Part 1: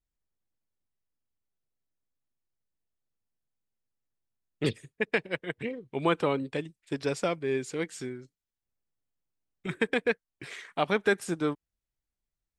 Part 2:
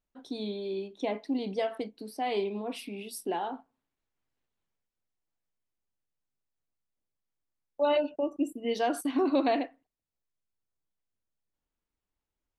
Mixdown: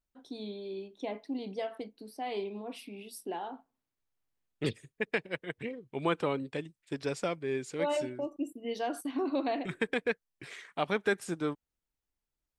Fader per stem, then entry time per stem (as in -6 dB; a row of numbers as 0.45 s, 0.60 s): -4.0 dB, -5.5 dB; 0.00 s, 0.00 s